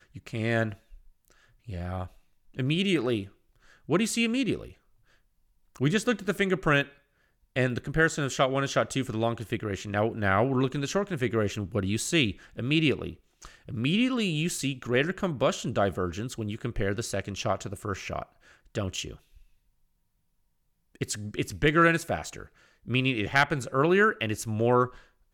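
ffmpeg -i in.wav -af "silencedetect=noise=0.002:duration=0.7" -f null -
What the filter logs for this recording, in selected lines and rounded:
silence_start: 19.53
silence_end: 20.95 | silence_duration: 1.42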